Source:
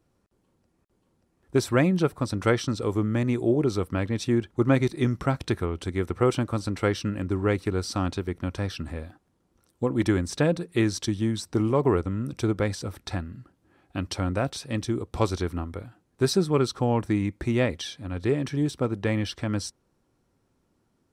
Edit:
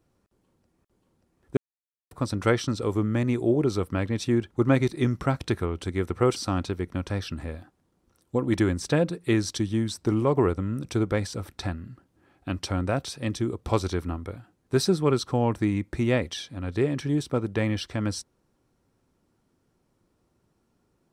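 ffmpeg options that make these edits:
-filter_complex "[0:a]asplit=4[a][b][c][d];[a]atrim=end=1.57,asetpts=PTS-STARTPTS,afade=t=out:st=1.566:d=0.004:c=hsin[e];[b]atrim=start=1.57:end=2.11,asetpts=PTS-STARTPTS,volume=0[f];[c]atrim=start=2.11:end=6.362,asetpts=PTS-STARTPTS,afade=t=in:d=0.004:c=hsin[g];[d]atrim=start=7.838[h];[e][f][g]concat=n=3:v=0:a=1[i];[i][h]acrossfade=d=0.004:c1=hsin:c2=hsin"

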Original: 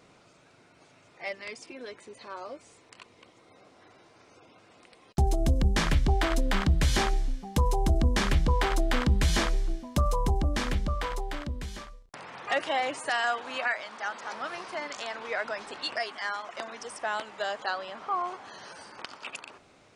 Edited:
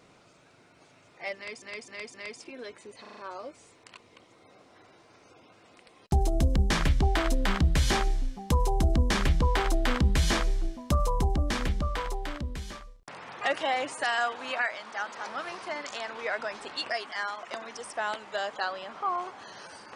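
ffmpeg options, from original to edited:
-filter_complex "[0:a]asplit=8[a][b][c][d][e][f][g][h];[a]atrim=end=1.622[i];[b]atrim=start=1.358:end=1.622[j];[c]atrim=start=1.358:end=1.622[k];[d]atrim=start=1.358:end=2.272[l];[e]atrim=start=2.228:end=2.272[m];[f]atrim=start=2.228:end=2.272[n];[g]atrim=start=2.228:end=2.272[o];[h]atrim=start=2.228[p];[i][j]acrossfade=d=0.004:c1=hsin:c2=hsin[q];[q][k]acrossfade=d=0.004:c1=hsin:c2=hsin[r];[r][l]acrossfade=d=0.004:c1=hsin:c2=hsin[s];[s][m]acrossfade=d=0.004:c1=hsin:c2=hsin[t];[t][n]acrossfade=d=0.004:c1=hsin:c2=hsin[u];[u][o]acrossfade=d=0.004:c1=hsin:c2=hsin[v];[v][p]acrossfade=d=0.004:c1=hsin:c2=hsin"

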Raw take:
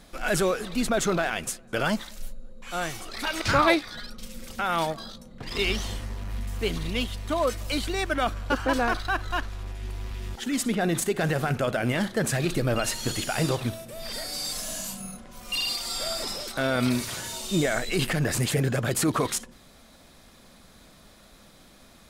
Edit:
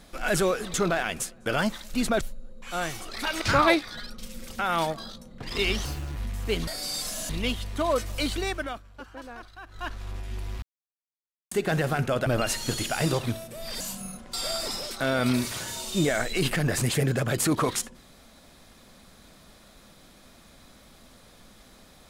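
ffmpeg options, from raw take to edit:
-filter_complex "[0:a]asplit=15[a][b][c][d][e][f][g][h][i][j][k][l][m][n][o];[a]atrim=end=0.742[p];[b]atrim=start=1.008:end=2.212[q];[c]atrim=start=0.738:end=1.012[r];[d]atrim=start=2.208:end=5.854[s];[e]atrim=start=5.85:end=6.29,asetpts=PTS-STARTPTS,asetrate=63945,aresample=44100,atrim=end_sample=13382,asetpts=PTS-STARTPTS[t];[f]atrim=start=6.286:end=6.812[u];[g]atrim=start=14.178:end=14.802[v];[h]atrim=start=6.808:end=8.32,asetpts=PTS-STARTPTS,afade=t=out:st=1.112:d=0.4:silence=0.133352[w];[i]atrim=start=8.32:end=9.2,asetpts=PTS-STARTPTS,volume=-17.5dB[x];[j]atrim=start=9.2:end=10.14,asetpts=PTS-STARTPTS,afade=t=in:d=0.4:silence=0.133352,afade=t=out:st=0.936:d=0.004:c=hsin[y];[k]atrim=start=10.14:end=11.03,asetpts=PTS-STARTPTS,volume=0[z];[l]atrim=start=11.03:end=11.782,asetpts=PTS-STARTPTS,afade=t=in:d=0.004:c=hsin[aa];[m]atrim=start=12.638:end=14.182[ab];[n]atrim=start=14.798:end=15.332[ac];[o]atrim=start=15.898[ad];[p][q]acrossfade=d=0.004:c1=hsin:c2=hsin[ae];[ae][r]acrossfade=d=0.004:c1=hsin:c2=hsin[af];[af][s]acrossfade=d=0.004:c1=hsin:c2=hsin[ag];[ag][t]acrossfade=d=0.004:c1=hsin:c2=hsin[ah];[ah][u]acrossfade=d=0.004:c1=hsin:c2=hsin[ai];[ai][v]acrossfade=d=0.004:c1=hsin:c2=hsin[aj];[w][x][y][z][aa]concat=n=5:v=0:a=1[ak];[aj][ak]acrossfade=d=0.004:c1=hsin:c2=hsin[al];[al][ab]acrossfade=d=0.004:c1=hsin:c2=hsin[am];[am][ac]acrossfade=d=0.004:c1=hsin:c2=hsin[an];[an][ad]acrossfade=d=0.004:c1=hsin:c2=hsin"

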